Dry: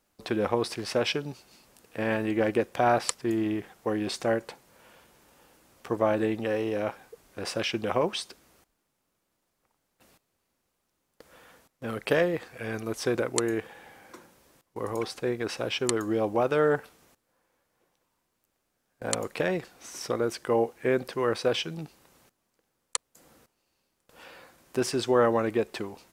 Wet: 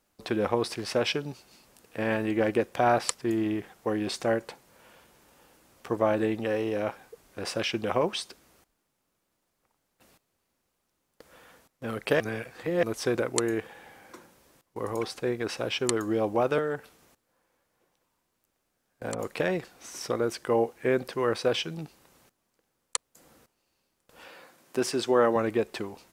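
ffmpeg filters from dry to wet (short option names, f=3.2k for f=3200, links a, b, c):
-filter_complex "[0:a]asettb=1/sr,asplit=3[a][b][c];[a]atrim=end=16.584[d];[b]atrim=start=16.58:end=19.19,asetpts=PTS-STARTPTS,afade=t=in:d=0.004:c=qsin,afade=t=out:st=2.606:d=0.004:c=qsin,acrossover=split=570|1700[e][f][g];[e]acompressor=threshold=-30dB:ratio=4[h];[f]acompressor=threshold=-39dB:ratio=4[i];[g]acompressor=threshold=-41dB:ratio=4[j];[h][i][j]amix=inputs=3:normalize=0[k];[c]atrim=start=19.186[l];[d][k]acrossfade=d=0.004:c1=hsin:c2=qsin[m];[m][l]acrossfade=d=0.004:c1=qsin:c2=hsin,asettb=1/sr,asplit=3[n][o][p];[n]atrim=end=24.274[q];[o]atrim=start=24.27:end=25.36,asetpts=PTS-STARTPTS,afade=t=in:d=0.004:c=qsin,afade=t=out:st=1.086:d=0.004:c=qsin,highpass=160[r];[p]atrim=start=25.356[s];[q][r]acrossfade=d=0.004:c1=hsin:c2=qsin[t];[t][s]acrossfade=d=0.004:c1=qsin:c2=hsin,asplit=3[u][v][w];[u]atrim=end=12.202[x];[v]atrim=start=12.198:end=12.832,asetpts=PTS-STARTPTS,areverse[y];[w]atrim=start=12.828[z];[x][y]acrossfade=d=0.004:c1=hsin:c2=hsin[aa];[aa][z]acrossfade=d=0.004:c1=hsin:c2=hsin"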